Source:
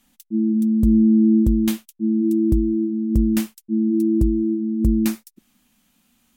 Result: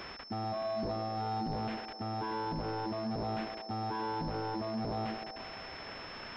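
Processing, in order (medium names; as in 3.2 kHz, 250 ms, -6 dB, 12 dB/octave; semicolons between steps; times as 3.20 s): zero-crossing glitches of -23.5 dBFS; reverb removal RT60 1.1 s; reverse; compression 6:1, threshold -26 dBFS, peak gain reduction 12.5 dB; reverse; peak limiter -27 dBFS, peak gain reduction 9.5 dB; wavefolder -35.5 dBFS; on a send: band-passed feedback delay 126 ms, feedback 78%, band-pass 600 Hz, level -8 dB; on the sum: class-D stage that switches slowly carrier 5.3 kHz; trim +4.5 dB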